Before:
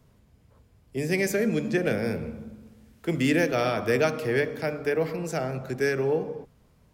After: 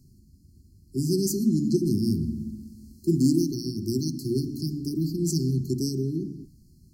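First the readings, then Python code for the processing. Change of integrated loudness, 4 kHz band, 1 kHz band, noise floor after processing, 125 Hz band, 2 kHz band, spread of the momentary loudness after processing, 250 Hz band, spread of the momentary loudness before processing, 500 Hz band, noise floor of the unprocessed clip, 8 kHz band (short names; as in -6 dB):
0.0 dB, +1.0 dB, under -40 dB, -56 dBFS, +5.5 dB, under -40 dB, 12 LU, +4.5 dB, 12 LU, -6.5 dB, -61 dBFS, +5.5 dB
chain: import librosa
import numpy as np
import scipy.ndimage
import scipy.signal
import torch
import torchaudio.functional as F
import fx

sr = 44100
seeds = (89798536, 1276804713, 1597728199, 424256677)

y = fx.hum_notches(x, sr, base_hz=60, count=6)
y = fx.rider(y, sr, range_db=10, speed_s=0.5)
y = fx.brickwall_bandstop(y, sr, low_hz=390.0, high_hz=4100.0)
y = y * librosa.db_to_amplitude(6.0)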